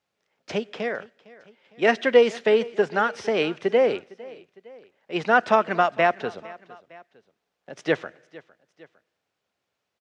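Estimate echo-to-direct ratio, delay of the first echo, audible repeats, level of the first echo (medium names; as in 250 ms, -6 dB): -20.0 dB, 457 ms, 2, -21.0 dB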